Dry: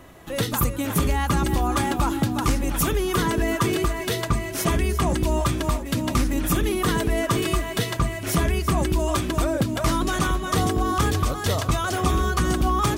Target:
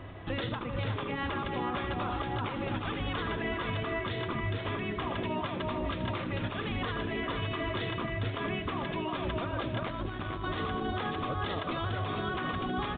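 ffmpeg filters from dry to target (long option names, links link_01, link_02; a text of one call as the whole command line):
ffmpeg -i in.wav -filter_complex "[0:a]aecho=1:1:81|153|445:0.2|0.126|0.473,asettb=1/sr,asplit=3[link_01][link_02][link_03];[link_01]atrim=end=9.834[link_04];[link_02]atrim=start=9.83:end=10.44,asetpts=PTS-STARTPTS,afade=type=in:duration=0.004:curve=qsin,afade=type=out:start_time=0.606:duration=0.004:curve=qsin,aeval=exprs='0.335*(cos(1*acos(clip(val(0)/0.335,-1,1)))-cos(1*PI/2))+0.075*(cos(3*acos(clip(val(0)/0.335,-1,1)))-cos(3*PI/2))':channel_layout=same[link_05];[link_03]atrim=start=10.436[link_06];[link_04][link_05]acrossfade=duration=0.004:curve1=hsin:curve2=qsin[link_07];[link_07][link_06]acrossfade=duration=0.004:curve1=qsin:curve2=hsin,afftfilt=real='re*lt(hypot(re,im),0.398)':imag='im*lt(hypot(re,im),0.398)':win_size=1024:overlap=0.75,equalizer=frequency=100:width=5.8:gain=13,alimiter=limit=-23dB:level=0:latency=1:release=313" -ar 8000 -c:a pcm_mulaw out.wav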